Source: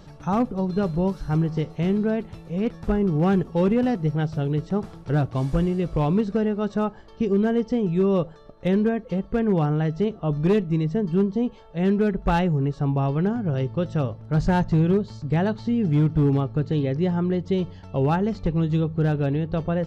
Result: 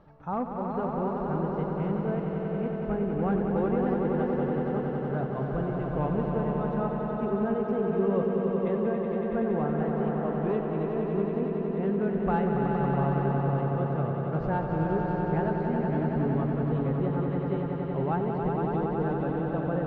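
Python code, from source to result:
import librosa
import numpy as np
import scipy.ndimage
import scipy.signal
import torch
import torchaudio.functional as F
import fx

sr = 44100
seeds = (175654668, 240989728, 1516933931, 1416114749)

y = scipy.signal.sosfilt(scipy.signal.butter(2, 1200.0, 'lowpass', fs=sr, output='sos'), x)
y = fx.low_shelf(y, sr, hz=470.0, db=-11.0)
y = fx.echo_swell(y, sr, ms=93, loudest=5, wet_db=-6.0)
y = F.gain(torch.from_numpy(y), -2.0).numpy()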